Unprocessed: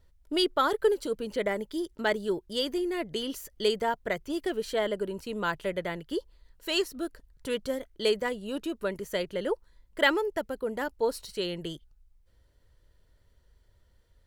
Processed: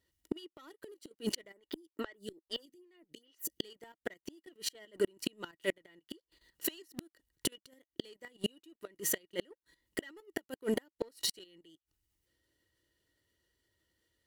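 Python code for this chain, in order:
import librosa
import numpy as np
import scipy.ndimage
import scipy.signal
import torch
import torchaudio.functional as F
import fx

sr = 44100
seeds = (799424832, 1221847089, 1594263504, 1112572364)

y = scipy.signal.sosfilt(scipy.signal.butter(2, 92.0, 'highpass', fs=sr, output='sos'), x)
y = fx.high_shelf(y, sr, hz=2300.0, db=12.0)
y = fx.level_steps(y, sr, step_db=13)
y = fx.leveller(y, sr, passes=2)
y = fx.small_body(y, sr, hz=(320.0, 1900.0, 2900.0), ring_ms=40, db=13)
y = fx.gate_flip(y, sr, shuts_db=-19.0, range_db=-35)
y = fx.stagger_phaser(y, sr, hz=2.4, at=(1.53, 3.59))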